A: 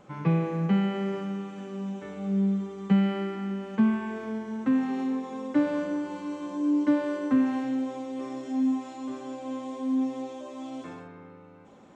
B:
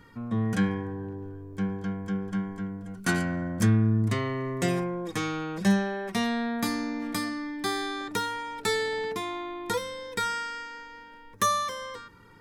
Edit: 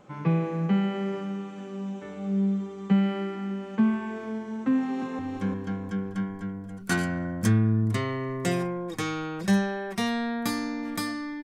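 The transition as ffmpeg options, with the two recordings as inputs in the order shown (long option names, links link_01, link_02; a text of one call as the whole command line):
ffmpeg -i cue0.wav -i cue1.wav -filter_complex "[0:a]apad=whole_dur=11.43,atrim=end=11.43,atrim=end=5.192[link_01];[1:a]atrim=start=1.358:end=7.6[link_02];[link_01][link_02]acrossfade=duration=0.004:curve1=hsin:curve2=hsin,asplit=2[link_03][link_04];[link_04]afade=type=in:start_time=4.66:duration=0.01,afade=type=out:start_time=5.19:duration=0.01,aecho=0:1:350|700|1050|1400|1750:0.668344|0.23392|0.0818721|0.0286552|0.0100293[link_05];[link_03][link_05]amix=inputs=2:normalize=0" out.wav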